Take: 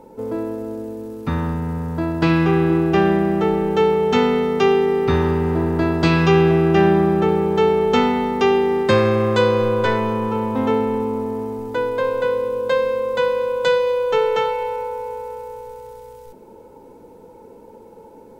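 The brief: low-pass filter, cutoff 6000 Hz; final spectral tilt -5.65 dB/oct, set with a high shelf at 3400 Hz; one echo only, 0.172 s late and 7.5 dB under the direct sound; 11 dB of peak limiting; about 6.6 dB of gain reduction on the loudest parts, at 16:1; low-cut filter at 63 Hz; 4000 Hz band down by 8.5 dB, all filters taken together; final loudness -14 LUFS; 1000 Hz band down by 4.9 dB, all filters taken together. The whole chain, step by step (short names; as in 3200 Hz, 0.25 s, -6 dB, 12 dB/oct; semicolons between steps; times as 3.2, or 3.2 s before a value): HPF 63 Hz; LPF 6000 Hz; bell 1000 Hz -5 dB; high shelf 3400 Hz -8 dB; bell 4000 Hz -5.5 dB; compressor 16:1, threshold -18 dBFS; limiter -20 dBFS; echo 0.172 s -7.5 dB; gain +13 dB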